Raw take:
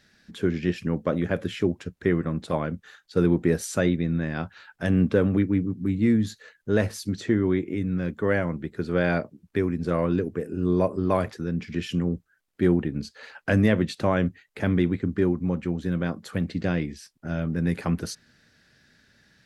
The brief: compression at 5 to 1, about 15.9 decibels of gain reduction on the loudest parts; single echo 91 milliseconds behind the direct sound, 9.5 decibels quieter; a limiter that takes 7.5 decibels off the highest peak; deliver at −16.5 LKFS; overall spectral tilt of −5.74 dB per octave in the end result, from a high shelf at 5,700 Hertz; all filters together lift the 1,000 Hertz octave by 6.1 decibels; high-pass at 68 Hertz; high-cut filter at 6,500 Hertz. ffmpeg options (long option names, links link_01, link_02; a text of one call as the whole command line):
ffmpeg -i in.wav -af "highpass=68,lowpass=6500,equalizer=frequency=1000:width_type=o:gain=7.5,highshelf=frequency=5700:gain=4,acompressor=threshold=-34dB:ratio=5,alimiter=level_in=3dB:limit=-24dB:level=0:latency=1,volume=-3dB,aecho=1:1:91:0.335,volume=22.5dB" out.wav